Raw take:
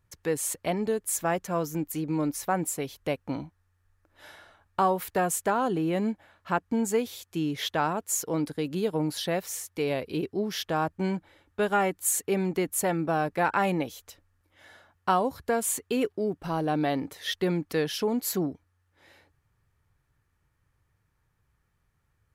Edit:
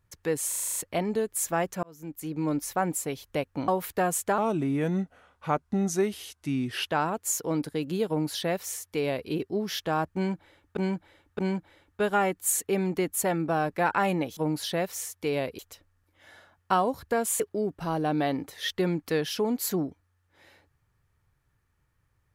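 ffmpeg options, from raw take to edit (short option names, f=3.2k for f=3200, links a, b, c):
-filter_complex "[0:a]asplit=17[a][b][c][d][e][f][g][h][i][j][k][l][m][n][o][p][q];[a]atrim=end=0.522[r];[b]atrim=start=0.478:end=0.522[s];[c]atrim=start=0.478:end=0.522[t];[d]atrim=start=0.478:end=0.522[u];[e]atrim=start=0.478:end=0.522[v];[f]atrim=start=0.478:end=0.522[w];[g]atrim=start=0.478:end=0.522[x];[h]atrim=start=0.478:end=1.55,asetpts=PTS-STARTPTS,afade=t=out:st=1.068:d=0.004:c=hsin[y];[i]atrim=start=1.55:end=3.402,asetpts=PTS-STARTPTS,afade=t=in:d=0.66[z];[j]atrim=start=4.858:end=5.564[aa];[k]atrim=start=5.56:end=7.7,asetpts=PTS-STARTPTS,asetrate=37926,aresample=44100,atrim=end_sample=109737,asetpts=PTS-STARTPTS[ab];[l]atrim=start=7.696:end=11.602[ac];[m]atrim=start=10.978:end=11.602[ad];[n]atrim=start=10.978:end=13.962[ae];[o]atrim=start=8.908:end=10.132[af];[p]atrim=start=13.958:end=15.772[ag];[q]atrim=start=16.028[ah];[r][s]acrossfade=d=0.004:c1=hsin:c2=hsin[ai];[ai][t]acrossfade=d=0.004:c1=hsin:c2=hsin[aj];[aj][u]acrossfade=d=0.004:c1=hsin:c2=hsin[ak];[ak][v]acrossfade=d=0.004:c1=hsin:c2=hsin[al];[al][w]acrossfade=d=0.004:c1=hsin:c2=hsin[am];[am][x]acrossfade=d=0.004:c1=hsin:c2=hsin[an];[y][z]concat=n=2:v=0:a=1[ao];[an][ao]acrossfade=d=0.004:c1=hsin:c2=hsin[ap];[ap][aa]acrossfade=d=0.004:c1=hsin:c2=hsin[aq];[aq][ab]acrossfade=d=0.004:c1=hsin:c2=hsin[ar];[ar][ac]acrossfade=d=0.004:c1=hsin:c2=hsin[as];[as][ad]acrossfade=d=0.004:c1=hsin:c2=hsin[at];[at][ae]acrossfade=d=0.004:c1=hsin:c2=hsin[au];[au][af]acrossfade=d=0.004:c1=hsin:c2=hsin[av];[av][ag]acrossfade=d=0.004:c1=hsin:c2=hsin[aw];[aw][ah]acrossfade=d=0.004:c1=hsin:c2=hsin"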